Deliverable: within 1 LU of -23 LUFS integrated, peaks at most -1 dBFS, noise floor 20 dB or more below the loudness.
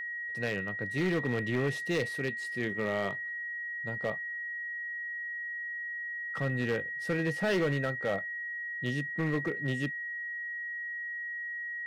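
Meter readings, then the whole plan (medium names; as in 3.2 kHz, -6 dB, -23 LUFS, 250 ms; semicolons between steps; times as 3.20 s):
clipped samples 1.1%; clipping level -24.0 dBFS; steady tone 1.9 kHz; tone level -35 dBFS; loudness -33.0 LUFS; peak level -24.0 dBFS; loudness target -23.0 LUFS
-> clip repair -24 dBFS; band-stop 1.9 kHz, Q 30; trim +10 dB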